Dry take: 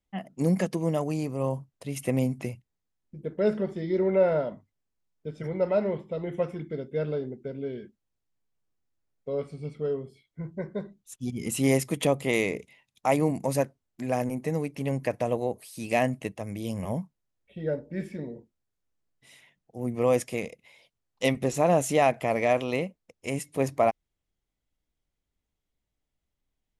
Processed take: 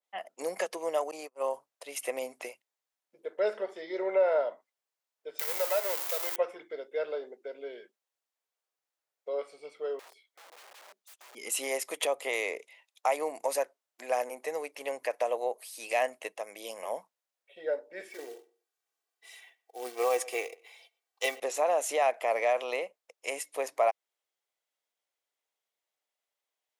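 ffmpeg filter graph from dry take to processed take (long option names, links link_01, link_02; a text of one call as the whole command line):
ffmpeg -i in.wav -filter_complex "[0:a]asettb=1/sr,asplit=3[link_01][link_02][link_03];[link_01]atrim=end=1.114[link_04];[link_02]atrim=start=1.11:end=1.54,asetpts=PTS-STARTPTS,afade=type=in:duration=0.004:curve=qsin,afade=type=out:start_time=0.426:duration=0.004:curve=qsin,highpass=frequency=100:width=0.5412,highpass=frequency=100:width=1.3066,agate=range=-35dB:threshold=-30dB:ratio=16:release=100:detection=peak[link_05];[link_03]atrim=start=1.536[link_06];[link_04][link_05]acrossfade=duration=0.004:curve1=hsin:curve2=qsin[link_07];[link_07][link_06]acrossfade=duration=0.004:curve1=qsin:curve2=hsin,asettb=1/sr,asplit=3[link_08][link_09][link_10];[link_08]atrim=end=5.394[link_11];[link_09]atrim=start=5.39:end=6.36,asetpts=PTS-STARTPTS,afade=type=in:duration=0.004:curve=qsin,afade=type=out:start_time=0.966:duration=0.004:curve=qsin,aeval=exprs='val(0)+0.5*0.02*sgn(val(0))':channel_layout=same,highpass=frequency=430:poles=1,aemphasis=mode=production:type=riaa[link_12];[link_10]atrim=start=6.356[link_13];[link_11][link_12]acrossfade=duration=0.004:curve1=hsin:curve2=qsin[link_14];[link_14][link_13]acrossfade=duration=0.004:curve1=qsin:curve2=hsin,asettb=1/sr,asplit=3[link_15][link_16][link_17];[link_15]atrim=end=9.994[link_18];[link_16]atrim=start=9.99:end=11.35,asetpts=PTS-STARTPTS,afade=type=in:duration=0.004:curve=qsin,afade=type=out:start_time=1.356:duration=0.004:curve=qsin,bandreject=frequency=570:width=19,acompressor=threshold=-44dB:ratio=4:attack=3.2:release=140:knee=1:detection=peak,aeval=exprs='(mod(282*val(0)+1,2)-1)/282':channel_layout=same[link_19];[link_17]atrim=start=11.346[link_20];[link_18][link_19]acrossfade=duration=0.004:curve1=hsin:curve2=qsin[link_21];[link_21][link_20]acrossfade=duration=0.004:curve1=qsin:curve2=hsin,asettb=1/sr,asplit=3[link_22][link_23][link_24];[link_22]atrim=end=18.094[link_25];[link_23]atrim=start=18.09:end=21.4,asetpts=PTS-STARTPTS,afade=type=in:duration=0.004:curve=qsin,afade=type=out:start_time=3.306:duration=0.004:curve=qsin,acrusher=bits=5:mode=log:mix=0:aa=0.000001,aecho=1:1:2.6:0.71,atrim=end_sample=145971,asplit=2[link_26][link_27];[link_27]adelay=121,lowpass=frequency=2400:poles=1,volume=-22dB,asplit=2[link_28][link_29];[link_29]adelay=121,lowpass=frequency=2400:poles=1,volume=0.22[link_30];[link_26][link_28][link_30]amix=inputs=3:normalize=0,atrim=end_sample=145971[link_31];[link_24]atrim=start=21.396[link_32];[link_25][link_31]acrossfade=duration=0.004:curve1=hsin:curve2=qsin[link_33];[link_33][link_32]acrossfade=duration=0.004:curve1=qsin:curve2=hsin,alimiter=limit=-15.5dB:level=0:latency=1:release=127,highpass=frequency=510:width=0.5412,highpass=frequency=510:width=1.3066,adynamicequalizer=threshold=0.00794:dfrequency=1800:dqfactor=0.7:tfrequency=1800:tqfactor=0.7:attack=5:release=100:ratio=0.375:range=1.5:mode=cutabove:tftype=highshelf,volume=1.5dB" out.wav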